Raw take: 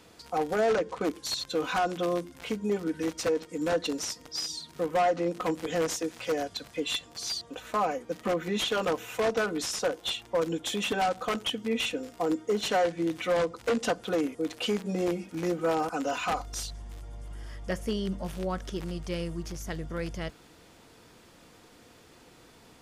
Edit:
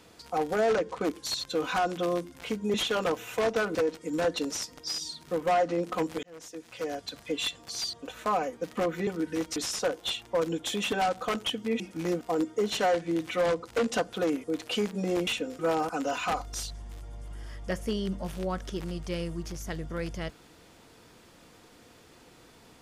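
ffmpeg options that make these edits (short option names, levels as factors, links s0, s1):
-filter_complex "[0:a]asplit=10[s0][s1][s2][s3][s4][s5][s6][s7][s8][s9];[s0]atrim=end=2.742[s10];[s1]atrim=start=8.548:end=9.562[s11];[s2]atrim=start=3.228:end=5.71,asetpts=PTS-STARTPTS,afade=t=out:st=2.478:d=0.004:c=hsin[s12];[s3]atrim=start=5.71:end=8.552,asetpts=PTS-STARTPTS,afade=t=in:d=1.04[s13];[s4]atrim=start=2.738:end=3.232[s14];[s5]atrim=start=9.558:end=11.802[s15];[s6]atrim=start=15.178:end=15.592[s16];[s7]atrim=start=12.118:end=15.182[s17];[s8]atrim=start=11.798:end=12.122[s18];[s9]atrim=start=15.588[s19];[s10][s11]acrossfade=d=0.004:c1=hsin:c2=hsin[s20];[s12][s13]concat=n=2:v=0:a=1[s21];[s20][s21]acrossfade=d=0.004:c1=hsin:c2=hsin[s22];[s22][s14]acrossfade=d=0.004:c1=hsin:c2=hsin[s23];[s23][s15]acrossfade=d=0.004:c1=hsin:c2=hsin[s24];[s24][s16]acrossfade=d=0.004:c1=hsin:c2=hsin[s25];[s25][s17]acrossfade=d=0.004:c1=hsin:c2=hsin[s26];[s26][s18]acrossfade=d=0.004:c1=hsin:c2=hsin[s27];[s27][s19]acrossfade=d=0.004:c1=hsin:c2=hsin"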